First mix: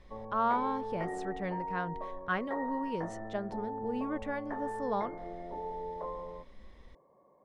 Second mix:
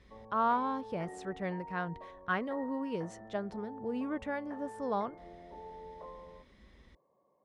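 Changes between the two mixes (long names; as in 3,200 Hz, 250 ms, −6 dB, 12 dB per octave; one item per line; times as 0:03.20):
background −8.5 dB
master: add high-pass filter 53 Hz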